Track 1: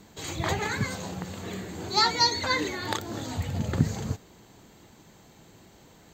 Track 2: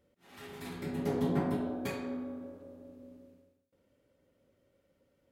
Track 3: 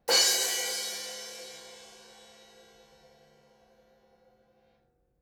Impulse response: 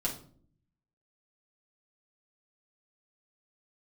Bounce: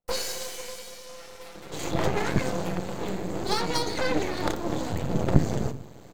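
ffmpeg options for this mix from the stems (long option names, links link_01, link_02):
-filter_complex "[0:a]equalizer=frequency=270:width=0.41:gain=5.5,adelay=1550,volume=0.5dB,asplit=2[link_01][link_02];[link_02]volume=-12dB[link_03];[1:a]highpass=580,aecho=1:1:5.9:0.65,adelay=800,volume=-3dB,asplit=2[link_04][link_05];[link_05]volume=-7dB[link_06];[2:a]lowshelf=frequency=170:gain=11.5,agate=range=-13dB:threshold=-54dB:ratio=16:detection=peak,volume=-9.5dB,asplit=2[link_07][link_08];[link_08]volume=-3.5dB[link_09];[3:a]atrim=start_sample=2205[link_10];[link_03][link_06][link_09]amix=inputs=3:normalize=0[link_11];[link_11][link_10]afir=irnorm=-1:irlink=0[link_12];[link_01][link_04][link_07][link_12]amix=inputs=4:normalize=0,equalizer=frequency=500:width_type=o:width=0.99:gain=6.5,acrossover=split=420[link_13][link_14];[link_14]acompressor=threshold=-22dB:ratio=6[link_15];[link_13][link_15]amix=inputs=2:normalize=0,aeval=exprs='max(val(0),0)':channel_layout=same"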